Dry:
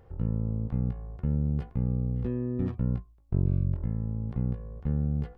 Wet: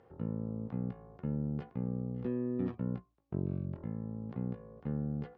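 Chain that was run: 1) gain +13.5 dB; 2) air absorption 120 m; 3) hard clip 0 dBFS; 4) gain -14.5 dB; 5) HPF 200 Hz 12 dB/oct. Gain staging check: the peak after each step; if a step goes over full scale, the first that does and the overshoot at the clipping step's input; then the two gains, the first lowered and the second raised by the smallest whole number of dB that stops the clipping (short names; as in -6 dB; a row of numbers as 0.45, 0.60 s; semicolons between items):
-3.0, -3.0, -3.0, -17.5, -22.0 dBFS; no overload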